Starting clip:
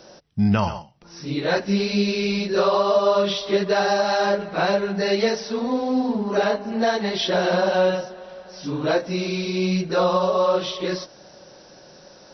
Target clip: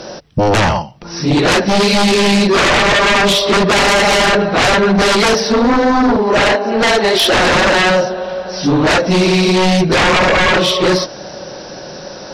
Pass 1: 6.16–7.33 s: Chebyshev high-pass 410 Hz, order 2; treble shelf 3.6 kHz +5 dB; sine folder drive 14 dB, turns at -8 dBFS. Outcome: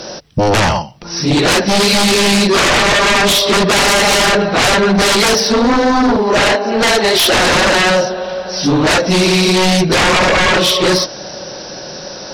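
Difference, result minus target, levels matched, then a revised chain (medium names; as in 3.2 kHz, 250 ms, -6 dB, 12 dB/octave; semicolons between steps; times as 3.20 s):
8 kHz band +4.5 dB
6.16–7.33 s: Chebyshev high-pass 410 Hz, order 2; treble shelf 3.6 kHz -3 dB; sine folder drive 14 dB, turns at -8 dBFS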